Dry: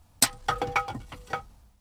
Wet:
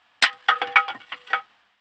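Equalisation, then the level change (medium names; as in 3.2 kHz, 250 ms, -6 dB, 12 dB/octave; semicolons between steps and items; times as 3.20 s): distance through air 130 m; cabinet simulation 390–8000 Hz, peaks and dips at 750 Hz +5 dB, 1.1 kHz +9 dB, 1.8 kHz +5 dB, 3 kHz +5 dB, 5 kHz +7 dB, 7.5 kHz +7 dB; high-order bell 2.3 kHz +13 dB; -2.0 dB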